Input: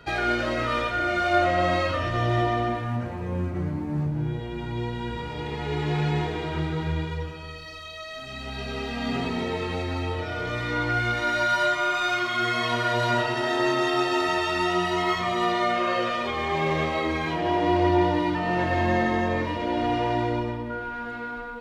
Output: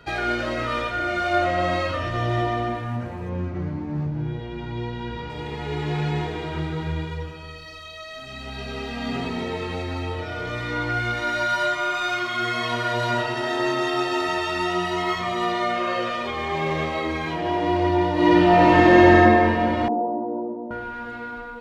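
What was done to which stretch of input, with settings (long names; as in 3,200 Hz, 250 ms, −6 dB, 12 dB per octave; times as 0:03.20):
0:03.29–0:05.30: low-pass filter 6,200 Hz 24 dB per octave
0:18.13–0:19.14: thrown reverb, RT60 2.9 s, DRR −9.5 dB
0:19.88–0:20.71: elliptic band-pass filter 200–830 Hz, stop band 60 dB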